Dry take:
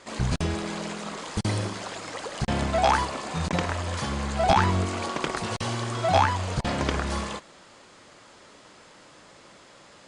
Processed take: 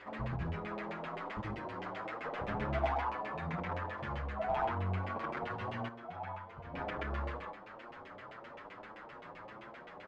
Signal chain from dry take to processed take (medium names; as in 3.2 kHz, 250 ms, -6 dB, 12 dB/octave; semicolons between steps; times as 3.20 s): 2.25–2.85 s: square wave that keeps the level; compression 2:1, threshold -46 dBFS, peak gain reduction 16.5 dB; on a send: loudspeakers at several distances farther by 25 m -5 dB, 44 m -2 dB, 55 m -9 dB, 66 m -11 dB; on the sum: LFO low-pass saw down 7.7 Hz 630–2600 Hz; 5.88–6.74 s: feedback comb 170 Hz, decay 1.8 s, mix 70%; in parallel at -6 dB: saturation -27.5 dBFS, distortion -13 dB; on the sum: endless flanger 7.7 ms +1.6 Hz; trim -4 dB